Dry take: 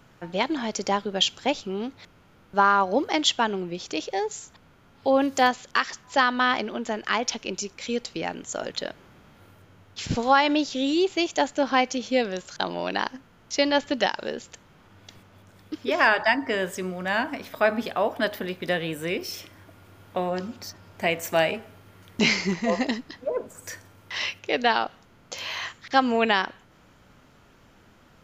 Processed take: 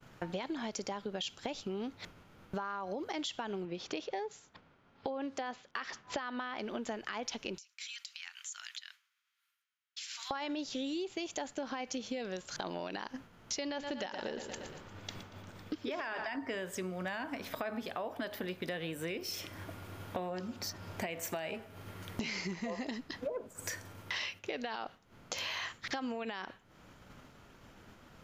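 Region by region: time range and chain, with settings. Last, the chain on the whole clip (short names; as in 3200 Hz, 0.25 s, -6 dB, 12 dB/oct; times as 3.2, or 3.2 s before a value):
3.65–6.59 Gaussian blur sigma 1.6 samples + low shelf 120 Hz -9 dB
7.58–10.31 Bessel high-pass 2200 Hz, order 8 + compressor 20:1, threshold -44 dBFS
13.65–16.36 bell 11000 Hz -14 dB 0.43 oct + feedback echo 0.117 s, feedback 54%, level -13 dB
whole clip: limiter -18 dBFS; compressor 8:1, threshold -41 dBFS; expander -49 dBFS; gain +5 dB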